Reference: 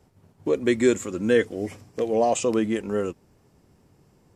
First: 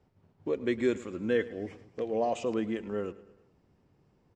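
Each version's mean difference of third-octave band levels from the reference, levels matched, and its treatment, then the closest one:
2.5 dB: low-pass filter 4,100 Hz 12 dB per octave
on a send: repeating echo 107 ms, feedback 52%, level −18 dB
on the sum: level −8 dB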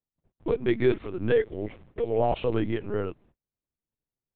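5.5 dB: noise gate −52 dBFS, range −34 dB
linear-prediction vocoder at 8 kHz pitch kept
level −3 dB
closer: first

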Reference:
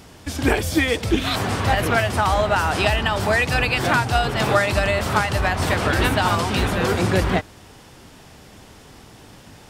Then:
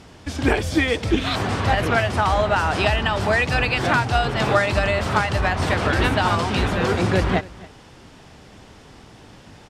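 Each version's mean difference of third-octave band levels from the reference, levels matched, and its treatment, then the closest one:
2.5 dB: high-frequency loss of the air 54 metres
on a send: single-tap delay 276 ms −21.5 dB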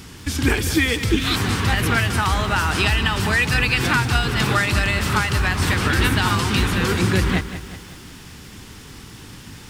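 4.0 dB: parametric band 640 Hz −14.5 dB 0.87 octaves
in parallel at +1 dB: downward compressor, threshold −29 dBFS, peak gain reduction 13.5 dB
on the sum: feedback echo at a low word length 187 ms, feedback 55%, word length 7 bits, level −12 dB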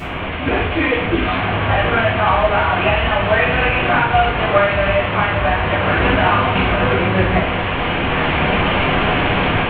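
13.0 dB: linear delta modulator 16 kbit/s, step −16.5 dBFS
automatic gain control gain up to 8 dB
coupled-rooms reverb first 0.57 s, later 1.8 s, from −17 dB, DRR −9.5 dB
level −10 dB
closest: first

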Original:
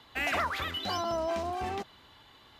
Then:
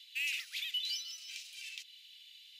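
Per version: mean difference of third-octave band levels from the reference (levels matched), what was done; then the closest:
19.0 dB: elliptic high-pass filter 2,500 Hz, stop band 60 dB
in parallel at −1.5 dB: downward compressor, threshold −51 dBFS, peak gain reduction 17 dB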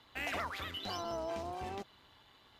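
1.5 dB: dynamic equaliser 1,300 Hz, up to −3 dB, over −39 dBFS, Q 0.8
amplitude modulation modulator 200 Hz, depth 40%
level −3.5 dB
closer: second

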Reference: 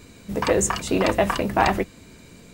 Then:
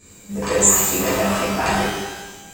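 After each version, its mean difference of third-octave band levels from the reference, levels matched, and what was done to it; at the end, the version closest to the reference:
8.5 dB: parametric band 7,400 Hz +14.5 dB 0.42 octaves
reverb with rising layers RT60 1.1 s, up +12 semitones, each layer −8 dB, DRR −10.5 dB
level −10.5 dB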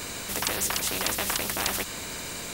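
13.5 dB: high-shelf EQ 8,800 Hz +6.5 dB
every bin compressed towards the loudest bin 4 to 1
level −4.5 dB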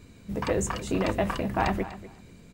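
3.0 dB: bass and treble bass +6 dB, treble −3 dB
repeating echo 245 ms, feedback 17%, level −15 dB
level −7.5 dB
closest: third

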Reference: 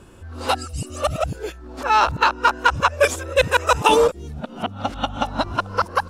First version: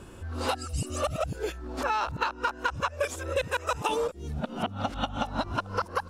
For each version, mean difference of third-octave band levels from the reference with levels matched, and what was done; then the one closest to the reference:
4.5 dB: downward compressor 6 to 1, threshold −26 dBFS, peak gain reduction 15 dB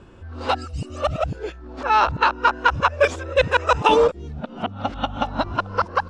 2.5 dB: high-frequency loss of the air 130 metres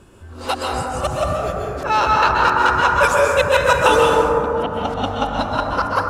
7.5 dB: dense smooth reverb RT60 2.9 s, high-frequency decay 0.25×, pre-delay 115 ms, DRR −3 dB
level −1.5 dB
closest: second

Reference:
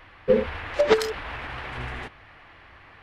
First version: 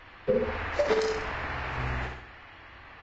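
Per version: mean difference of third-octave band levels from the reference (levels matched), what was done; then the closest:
5.0 dB: dynamic equaliser 3,300 Hz, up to −6 dB, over −49 dBFS, Q 2.7
downward compressor 8 to 1, threshold −21 dBFS, peak gain reduction 9 dB
repeating echo 64 ms, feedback 49%, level −4.5 dB
level −1 dB
Ogg Vorbis 32 kbit/s 16,000 Hz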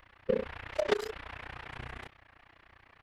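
1.5 dB: stylus tracing distortion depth 0.024 ms
high-shelf EQ 8,600 Hz +6.5 dB
amplitude modulation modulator 30 Hz, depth 95%
wow of a warped record 45 rpm, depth 100 cents
level −6 dB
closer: second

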